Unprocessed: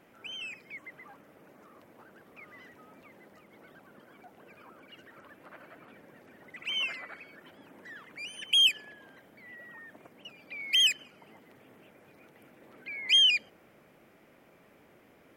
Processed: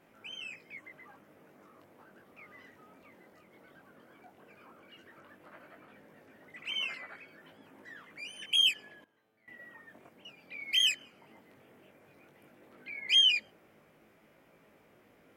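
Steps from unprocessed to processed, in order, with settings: chorus 0.14 Hz, delay 18.5 ms, depth 3.5 ms; 9.04–9.48 resonator 110 Hz, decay 1.2 s, harmonics all, mix 90%

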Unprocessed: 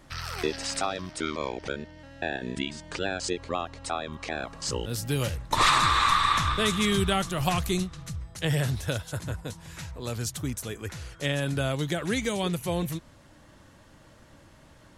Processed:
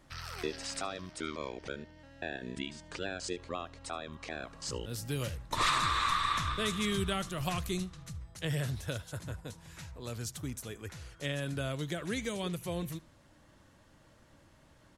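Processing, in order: dynamic EQ 820 Hz, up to -7 dB, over -49 dBFS, Q 6.3; on a send: echo 76 ms -22.5 dB; on the sum: gain -7.5 dB

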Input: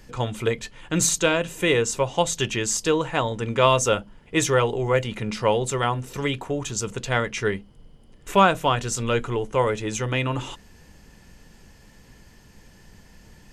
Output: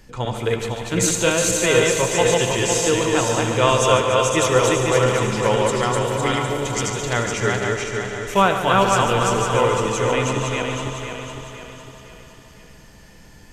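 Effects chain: regenerating reverse delay 0.253 s, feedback 66%, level -1.5 dB; thinning echo 0.144 s, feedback 77%, high-pass 210 Hz, level -10 dB; on a send at -10 dB: reverb RT60 0.50 s, pre-delay 68 ms

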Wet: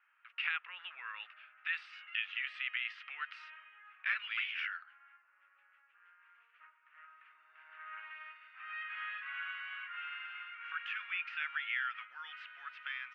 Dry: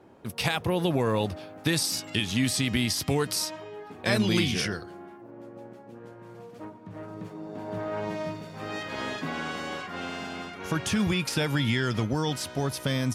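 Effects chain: Chebyshev band-pass 1300–2800 Hz, order 3; gain -3 dB

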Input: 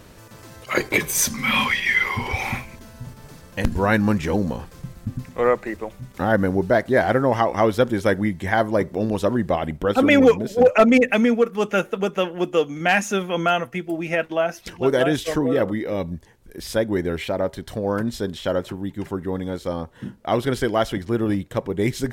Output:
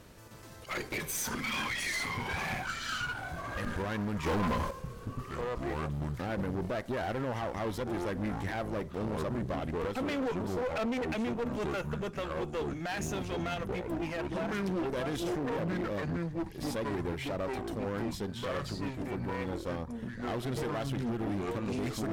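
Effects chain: echoes that change speed 0.251 s, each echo -6 st, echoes 2, each echo -6 dB; limiter -14 dBFS, peak gain reduction 10.5 dB; one-sided clip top -29 dBFS, bottom -17.5 dBFS; 4.26–4.71 sample leveller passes 3; gain -8 dB

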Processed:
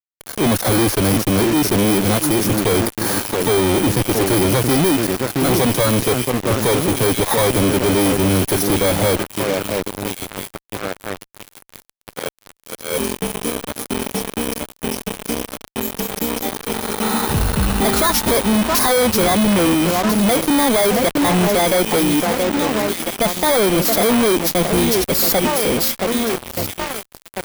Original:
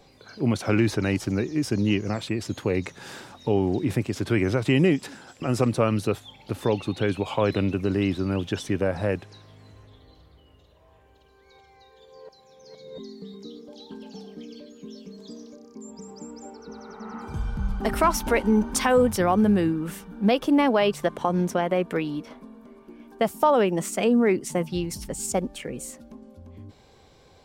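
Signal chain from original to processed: FFT order left unsorted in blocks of 16 samples; HPF 60 Hz 12 dB/oct; low shelf 290 Hz -6 dB; transient shaper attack -2 dB, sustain -8 dB; on a send: echo with dull and thin repeats by turns 0.673 s, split 2000 Hz, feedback 72%, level -14 dB; on the sum: fuzz box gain 48 dB, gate -42 dBFS

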